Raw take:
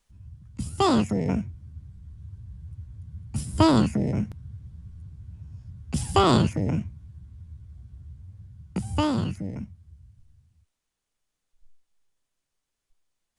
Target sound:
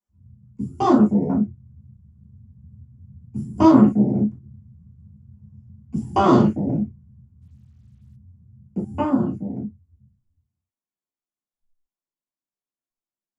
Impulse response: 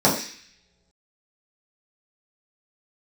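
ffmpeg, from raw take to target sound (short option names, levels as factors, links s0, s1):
-filter_complex "[0:a]afwtdn=0.02[s0];[1:a]atrim=start_sample=2205,atrim=end_sample=3969,asetrate=57330,aresample=44100[s1];[s0][s1]afir=irnorm=-1:irlink=0,asplit=3[s2][s3][s4];[s2]afade=t=out:st=7.41:d=0.02[s5];[s3]acrusher=bits=8:mix=0:aa=0.5,afade=t=in:st=7.41:d=0.02,afade=t=out:st=8.15:d=0.02[s6];[s4]afade=t=in:st=8.15:d=0.02[s7];[s5][s6][s7]amix=inputs=3:normalize=0,volume=0.133"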